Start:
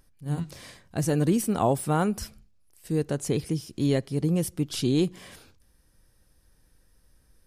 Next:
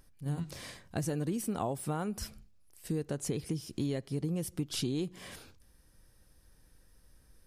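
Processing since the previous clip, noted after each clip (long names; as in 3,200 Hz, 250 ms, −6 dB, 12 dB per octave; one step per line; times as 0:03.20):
downward compressor 5 to 1, threshold −31 dBFS, peak gain reduction 12 dB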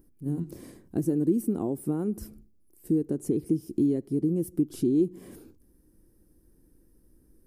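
drawn EQ curve 130 Hz 0 dB, 340 Hz +14 dB, 580 Hz −4 dB, 3,500 Hz −16 dB, 6,300 Hz −10 dB, 14,000 Hz +3 dB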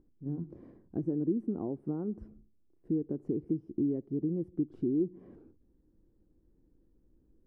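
low-pass filter 1,100 Hz 12 dB per octave
level −6 dB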